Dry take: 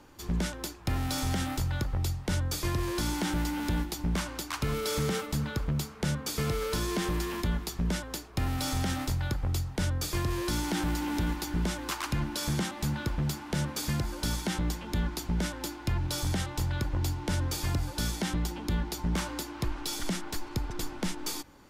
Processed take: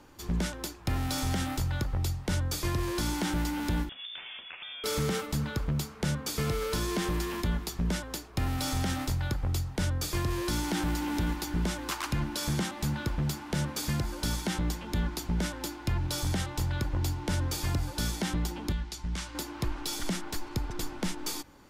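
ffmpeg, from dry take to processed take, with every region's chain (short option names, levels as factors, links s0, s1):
-filter_complex "[0:a]asettb=1/sr,asplit=3[s0][s1][s2];[s0]atrim=end=3.894[s3];[s1]atrim=start=3.89:end=4.84,asetpts=PTS-STARTPTS,afade=t=in:d=0.004:c=qsin,afade=t=out:st=0.946:d=0.004:c=qsin,highpass=200,acompressor=threshold=0.0141:ratio=12:attack=3.2:release=140:knee=1:detection=peak,lowpass=f=3100:t=q:w=0.5098,lowpass=f=3100:t=q:w=0.6013,lowpass=f=3100:t=q:w=0.9,lowpass=f=3100:t=q:w=2.563,afreqshift=-3700[s4];[s2]atrim=start=4.836[s5];[s3][s4]acrossfade=d=0.004:c1=hsin:c2=qsin[s6];[s6][s5]acrossfade=d=0.004:c1=qsin:c2=hsin,asettb=1/sr,asplit=3[s7][s8][s9];[s7]atrim=end=18.724[s10];[s8]atrim=start=18.72:end=19.35,asetpts=PTS-STARTPTS,afade=t=in:d=0.004:c=qsin,afade=t=out:st=0.626:d=0.004:c=qsin,lowpass=8600,equalizer=f=430:w=0.32:g=-12[s11];[s9]atrim=start=19.346[s12];[s10][s11]acrossfade=d=0.004:c1=hsin:c2=qsin[s13];[s13][s12]acrossfade=d=0.004:c1=qsin:c2=hsin"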